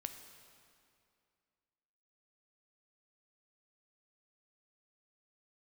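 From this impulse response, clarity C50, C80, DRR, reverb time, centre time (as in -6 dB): 8.0 dB, 9.0 dB, 6.5 dB, 2.4 s, 33 ms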